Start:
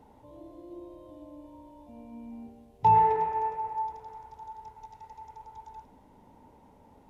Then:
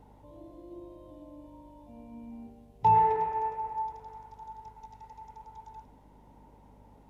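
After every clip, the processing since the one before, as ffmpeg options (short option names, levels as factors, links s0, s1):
-af "aeval=exprs='val(0)+0.00158*(sin(2*PI*50*n/s)+sin(2*PI*2*50*n/s)/2+sin(2*PI*3*50*n/s)/3+sin(2*PI*4*50*n/s)/4+sin(2*PI*5*50*n/s)/5)':c=same,volume=0.841"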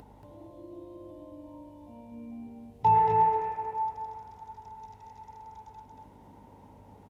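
-filter_complex "[0:a]highpass=41,acompressor=mode=upward:threshold=0.00447:ratio=2.5,asplit=2[s0][s1];[s1]aecho=0:1:231:0.631[s2];[s0][s2]amix=inputs=2:normalize=0"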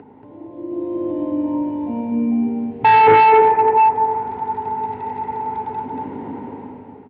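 -af "dynaudnorm=f=250:g=7:m=5.62,aresample=11025,volume=6.68,asoftclip=hard,volume=0.15,aresample=44100,highpass=f=100:w=0.5412,highpass=f=100:w=1.3066,equalizer=f=100:t=q:w=4:g=-6,equalizer=f=170:t=q:w=4:g=-7,equalizer=f=260:t=q:w=4:g=7,equalizer=f=410:t=q:w=4:g=7,equalizer=f=600:t=q:w=4:g=-7,equalizer=f=1100:t=q:w=4:g=-3,lowpass=f=2500:w=0.5412,lowpass=f=2500:w=1.3066,volume=2.66"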